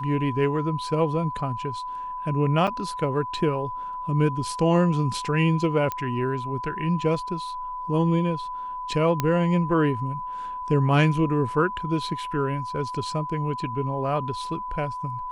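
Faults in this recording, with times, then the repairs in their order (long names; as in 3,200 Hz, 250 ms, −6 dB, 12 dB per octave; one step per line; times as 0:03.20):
whistle 1,000 Hz −30 dBFS
0:02.67–0:02.68: drop-out 6.4 ms
0:05.92: click −14 dBFS
0:09.20: click −9 dBFS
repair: click removal
notch filter 1,000 Hz, Q 30
repair the gap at 0:02.67, 6.4 ms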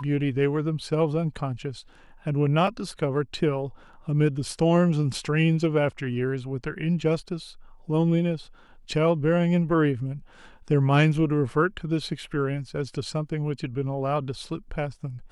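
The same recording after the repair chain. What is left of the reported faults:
none of them is left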